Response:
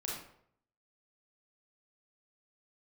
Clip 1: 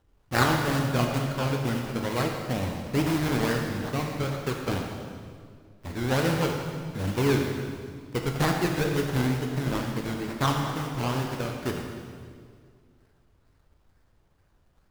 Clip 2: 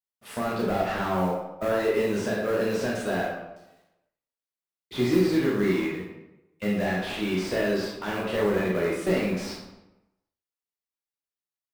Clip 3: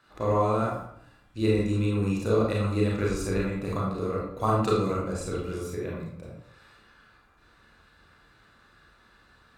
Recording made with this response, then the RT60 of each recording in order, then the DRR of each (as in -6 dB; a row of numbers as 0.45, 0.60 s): 3; 2.1, 0.95, 0.65 s; 1.5, -4.0, -4.5 dB